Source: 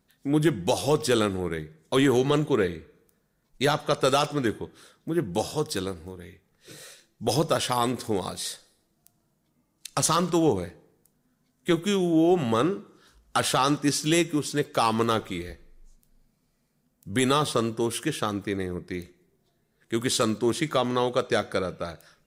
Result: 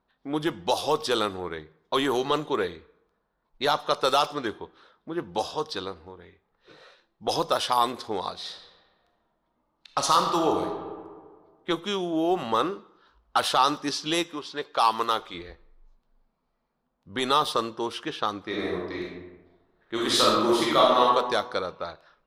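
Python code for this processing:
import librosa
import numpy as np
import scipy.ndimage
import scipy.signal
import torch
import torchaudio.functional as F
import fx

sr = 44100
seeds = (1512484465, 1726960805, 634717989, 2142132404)

y = fx.reverb_throw(x, sr, start_s=8.34, length_s=2.32, rt60_s=1.8, drr_db=3.5)
y = fx.low_shelf(y, sr, hz=360.0, db=-8.0, at=(14.23, 15.34))
y = fx.reverb_throw(y, sr, start_s=18.43, length_s=2.59, rt60_s=1.1, drr_db=-5.0)
y = fx.graphic_eq_10(y, sr, hz=(125, 250, 1000, 2000, 4000, 8000), db=(-11, -3, 9, -4, 6, -10))
y = fx.env_lowpass(y, sr, base_hz=2100.0, full_db=-17.5)
y = fx.high_shelf(y, sr, hz=4200.0, db=6.0)
y = y * 10.0 ** (-3.0 / 20.0)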